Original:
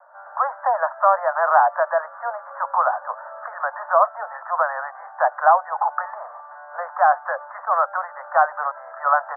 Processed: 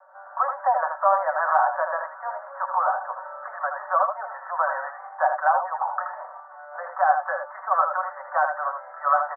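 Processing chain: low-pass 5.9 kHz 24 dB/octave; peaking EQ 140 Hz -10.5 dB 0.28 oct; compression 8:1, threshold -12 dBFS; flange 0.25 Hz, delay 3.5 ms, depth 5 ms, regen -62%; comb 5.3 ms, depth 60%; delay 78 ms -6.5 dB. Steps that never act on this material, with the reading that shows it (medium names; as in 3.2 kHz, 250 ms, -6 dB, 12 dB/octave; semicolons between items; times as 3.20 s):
low-pass 5.9 kHz: input has nothing above 1.9 kHz; peaking EQ 140 Hz: input has nothing below 450 Hz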